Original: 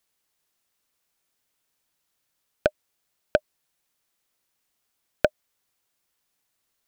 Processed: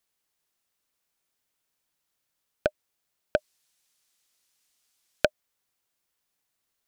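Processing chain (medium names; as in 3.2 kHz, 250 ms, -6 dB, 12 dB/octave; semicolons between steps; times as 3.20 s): 3.37–5.26 s: peaking EQ 6.1 kHz +10.5 dB 2.9 oct; trim -3.5 dB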